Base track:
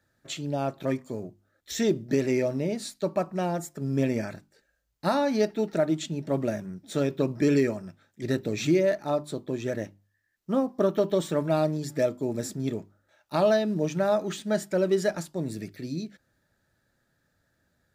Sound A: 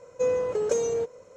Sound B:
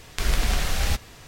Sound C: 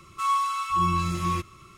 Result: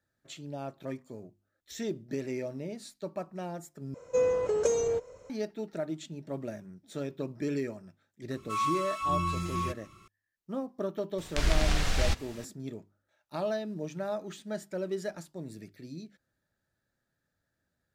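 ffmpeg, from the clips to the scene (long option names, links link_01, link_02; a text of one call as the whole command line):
ffmpeg -i bed.wav -i cue0.wav -i cue1.wav -i cue2.wav -filter_complex "[0:a]volume=-10dB[link_01];[1:a]asubboost=boost=9.5:cutoff=84[link_02];[2:a]acrossover=split=8600[link_03][link_04];[link_04]acompressor=threshold=-53dB:ratio=4:attack=1:release=60[link_05];[link_03][link_05]amix=inputs=2:normalize=0[link_06];[link_01]asplit=2[link_07][link_08];[link_07]atrim=end=3.944[link_09];[link_02]atrim=end=1.36,asetpts=PTS-STARTPTS,volume=-1dB[link_10];[link_08]atrim=start=5.296[link_11];[3:a]atrim=end=1.77,asetpts=PTS-STARTPTS,volume=-6dB,afade=type=in:duration=0.004:curve=hsin,afade=type=out:start_time=1.766:duration=0.004:curve=hsin,adelay=8310[link_12];[link_06]atrim=end=1.27,asetpts=PTS-STARTPTS,volume=-3.5dB,afade=type=in:duration=0.004:curve=hsin,afade=type=out:start_time=1.266:duration=0.004:curve=hsin,adelay=11180[link_13];[link_09][link_10]acrossfade=duration=0.004:curve1=hsin:curve2=hsin[link_14];[link_14][link_11]acrossfade=duration=0.004:curve1=hsin:curve2=hsin[link_15];[link_15][link_12][link_13]amix=inputs=3:normalize=0" out.wav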